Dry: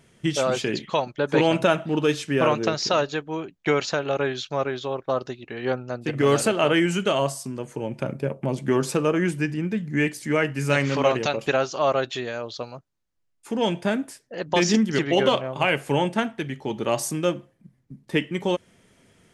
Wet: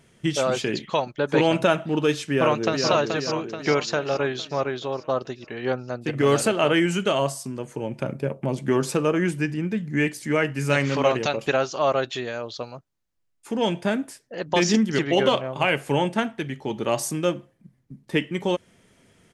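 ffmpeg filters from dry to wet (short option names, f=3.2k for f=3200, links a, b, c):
-filter_complex "[0:a]asplit=2[a][b];[b]afade=t=in:st=2.29:d=0.01,afade=t=out:st=2.88:d=0.01,aecho=0:1:430|860|1290|1720|2150|2580|3010:0.562341|0.309288|0.170108|0.0935595|0.0514577|0.0283018|0.015566[c];[a][c]amix=inputs=2:normalize=0"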